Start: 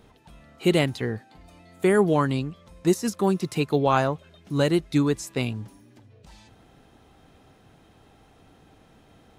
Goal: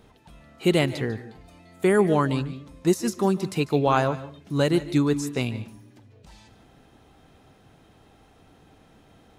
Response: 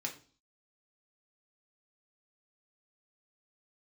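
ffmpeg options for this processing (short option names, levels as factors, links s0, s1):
-filter_complex "[0:a]asplit=2[s0][s1];[1:a]atrim=start_sample=2205,adelay=146[s2];[s1][s2]afir=irnorm=-1:irlink=0,volume=0.178[s3];[s0][s3]amix=inputs=2:normalize=0"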